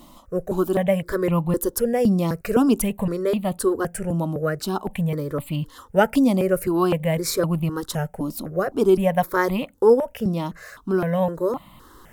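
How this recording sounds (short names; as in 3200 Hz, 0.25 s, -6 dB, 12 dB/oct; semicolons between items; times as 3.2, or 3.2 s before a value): notches that jump at a steady rate 3.9 Hz 440–1600 Hz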